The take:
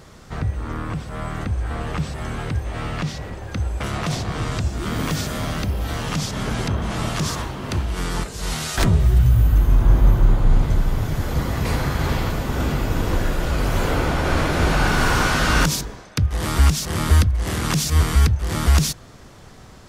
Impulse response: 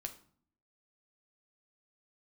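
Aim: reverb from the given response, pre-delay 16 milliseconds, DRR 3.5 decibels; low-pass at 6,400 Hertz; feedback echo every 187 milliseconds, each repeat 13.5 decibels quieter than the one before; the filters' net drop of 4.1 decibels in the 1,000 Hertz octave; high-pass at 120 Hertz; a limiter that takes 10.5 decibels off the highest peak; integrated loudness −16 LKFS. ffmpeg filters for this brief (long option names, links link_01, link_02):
-filter_complex "[0:a]highpass=120,lowpass=6400,equalizer=frequency=1000:width_type=o:gain=-5.5,alimiter=limit=-19dB:level=0:latency=1,aecho=1:1:187|374:0.211|0.0444,asplit=2[link_01][link_02];[1:a]atrim=start_sample=2205,adelay=16[link_03];[link_02][link_03]afir=irnorm=-1:irlink=0,volume=-1dB[link_04];[link_01][link_04]amix=inputs=2:normalize=0,volume=11dB"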